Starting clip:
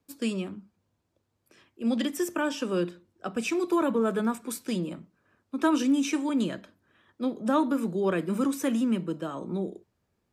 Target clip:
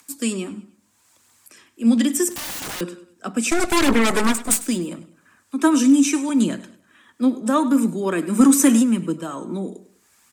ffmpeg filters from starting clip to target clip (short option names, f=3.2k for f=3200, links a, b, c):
-filter_complex "[0:a]acrossover=split=130|900[a][b][c];[c]acompressor=mode=upward:threshold=-52dB:ratio=2.5[d];[a][b][d]amix=inputs=3:normalize=0,asplit=3[e][f][g];[e]afade=t=out:st=3.5:d=0.02[h];[f]aeval=exprs='0.158*(cos(1*acos(clip(val(0)/0.158,-1,1)))-cos(1*PI/2))+0.0562*(cos(8*acos(clip(val(0)/0.158,-1,1)))-cos(8*PI/2))':c=same,afade=t=in:st=3.5:d=0.02,afade=t=out:st=4.61:d=0.02[i];[g]afade=t=in:st=4.61:d=0.02[j];[h][i][j]amix=inputs=3:normalize=0,aemphasis=mode=production:type=cd,aphaser=in_gain=1:out_gain=1:delay=4.6:decay=0.31:speed=0.77:type=triangular,equalizer=f=250:t=o:w=1:g=10,equalizer=f=1k:t=o:w=1:g=5,equalizer=f=2k:t=o:w=1:g=5,equalizer=f=8k:t=o:w=1:g=11,asplit=2[k][l];[l]aecho=0:1:100|200|300:0.141|0.0523|0.0193[m];[k][m]amix=inputs=2:normalize=0,asettb=1/sr,asplit=3[n][o][p];[n]atrim=end=2.314[q];[o]atrim=start=2.31:end=2.81,asetpts=PTS-STARTPTS,afade=t=in:d=0.004:c=qsin,afade=t=out:st=0.496:d=0.004:c=qsin,aeval=exprs='(mod(16.8*val(0)+1,2)-1)/16.8':c=same[r];[p]atrim=start=2.806[s];[q][r]acrossfade=d=0.004:c1=hsin:c2=qsin[t];[t][s]acrossfade=d=0.004:c1=qsin:c2=hsin,asplit=3[u][v][w];[u]afade=t=out:st=8.38:d=0.02[x];[v]acontrast=46,afade=t=in:st=8.38:d=0.02,afade=t=out:st=8.82:d=0.02[y];[w]afade=t=in:st=8.82:d=0.02[z];[x][y][z]amix=inputs=3:normalize=0,volume=-1dB"